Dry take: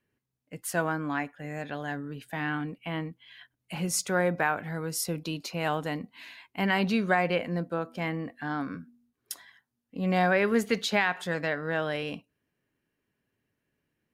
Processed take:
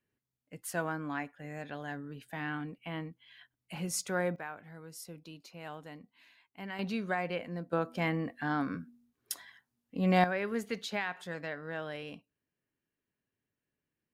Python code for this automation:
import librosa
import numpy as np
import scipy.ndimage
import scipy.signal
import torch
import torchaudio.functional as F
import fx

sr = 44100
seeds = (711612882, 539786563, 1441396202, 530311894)

y = fx.gain(x, sr, db=fx.steps((0.0, -6.0), (4.36, -15.5), (6.79, -8.5), (7.73, 0.0), (10.24, -9.5)))